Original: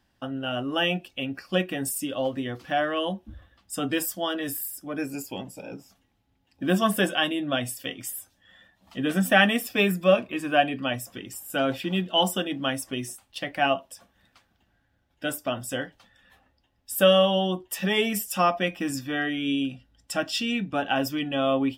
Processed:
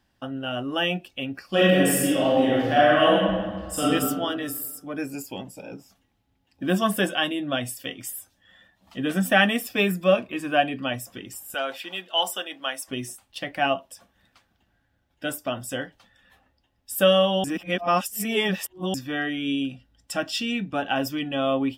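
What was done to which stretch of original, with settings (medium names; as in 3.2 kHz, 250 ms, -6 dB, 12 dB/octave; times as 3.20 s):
1.49–3.88 s: reverb throw, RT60 1.6 s, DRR -8 dB
11.54–12.88 s: high-pass 650 Hz
17.44–18.94 s: reverse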